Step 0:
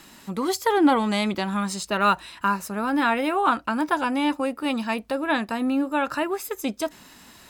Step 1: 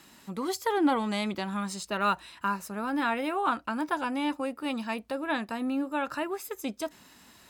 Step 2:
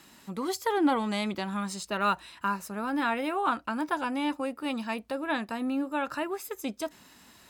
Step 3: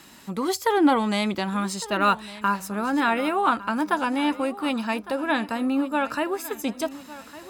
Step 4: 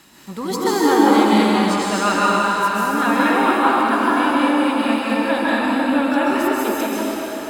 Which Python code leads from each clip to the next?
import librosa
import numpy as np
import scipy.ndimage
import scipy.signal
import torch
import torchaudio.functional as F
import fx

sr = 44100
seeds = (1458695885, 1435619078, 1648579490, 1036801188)

y1 = scipy.signal.sosfilt(scipy.signal.butter(2, 41.0, 'highpass', fs=sr, output='sos'), x)
y1 = y1 * librosa.db_to_amplitude(-6.5)
y2 = y1
y3 = fx.echo_feedback(y2, sr, ms=1157, feedback_pct=38, wet_db=-17)
y3 = y3 * librosa.db_to_amplitude(6.0)
y4 = fx.rev_plate(y3, sr, seeds[0], rt60_s=3.7, hf_ratio=0.85, predelay_ms=120, drr_db=-7.5)
y4 = y4 * librosa.db_to_amplitude(-1.0)